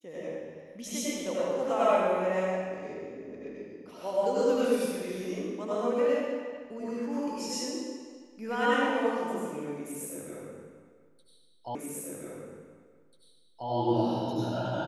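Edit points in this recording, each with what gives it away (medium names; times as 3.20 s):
11.75 s: repeat of the last 1.94 s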